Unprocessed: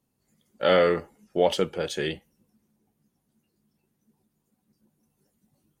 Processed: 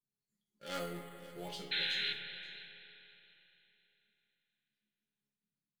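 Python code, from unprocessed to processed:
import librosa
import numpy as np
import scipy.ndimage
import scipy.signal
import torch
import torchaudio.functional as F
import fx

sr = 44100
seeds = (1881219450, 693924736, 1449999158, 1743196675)

p1 = fx.peak_eq(x, sr, hz=570.0, db=-8.0, octaves=1.3)
p2 = fx.quant_companded(p1, sr, bits=2)
p3 = p1 + (p2 * 10.0 ** (-7.5 / 20.0))
p4 = fx.rotary_switch(p3, sr, hz=5.0, then_hz=0.6, switch_at_s=0.58)
p5 = fx.resonator_bank(p4, sr, root=49, chord='major', decay_s=0.37)
p6 = fx.spec_paint(p5, sr, seeds[0], shape='noise', start_s=1.71, length_s=0.42, low_hz=1400.0, high_hz=4200.0, level_db=-31.0)
p7 = fx.rider(p6, sr, range_db=10, speed_s=0.5)
p8 = fx.rev_spring(p7, sr, rt60_s=3.3, pass_ms=(31, 50, 58), chirp_ms=45, drr_db=6.0)
p9 = fx.resample_bad(p8, sr, factor=4, down='filtered', up='hold', at=(0.79, 1.49))
p10 = fx.peak_eq(p9, sr, hz=4200.0, db=6.5, octaves=0.41)
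p11 = p10 + fx.echo_single(p10, sr, ms=527, db=-18.5, dry=0)
y = p11 * 10.0 ** (-3.5 / 20.0)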